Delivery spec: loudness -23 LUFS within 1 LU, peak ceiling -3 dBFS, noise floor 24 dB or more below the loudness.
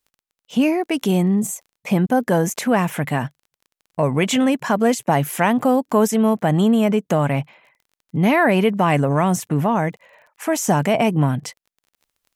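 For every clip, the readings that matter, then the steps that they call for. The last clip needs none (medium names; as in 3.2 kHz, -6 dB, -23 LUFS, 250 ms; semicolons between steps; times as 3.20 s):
tick rate 24 per s; loudness -19.0 LUFS; peak level -4.0 dBFS; loudness target -23.0 LUFS
-> de-click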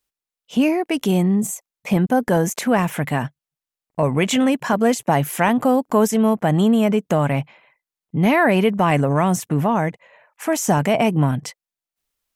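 tick rate 0 per s; loudness -19.0 LUFS; peak level -4.0 dBFS; loudness target -23.0 LUFS
-> trim -4 dB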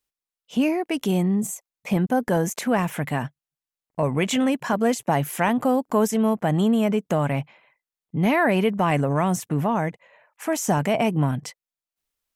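loudness -23.0 LUFS; peak level -8.0 dBFS; noise floor -92 dBFS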